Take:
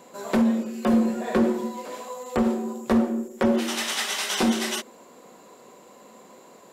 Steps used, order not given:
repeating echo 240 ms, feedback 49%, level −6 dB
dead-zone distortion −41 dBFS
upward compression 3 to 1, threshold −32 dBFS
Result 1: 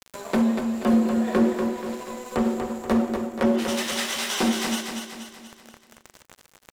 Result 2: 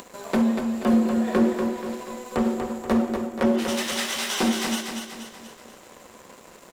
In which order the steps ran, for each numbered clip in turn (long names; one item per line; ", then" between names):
dead-zone distortion, then upward compression, then repeating echo
upward compression, then dead-zone distortion, then repeating echo